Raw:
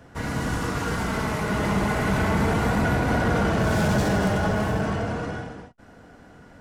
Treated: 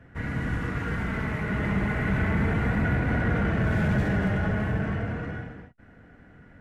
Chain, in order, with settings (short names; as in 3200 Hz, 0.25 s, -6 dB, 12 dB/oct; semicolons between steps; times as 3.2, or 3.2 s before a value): EQ curve 120 Hz 0 dB, 1000 Hz -10 dB, 1900 Hz +1 dB, 4900 Hz -18 dB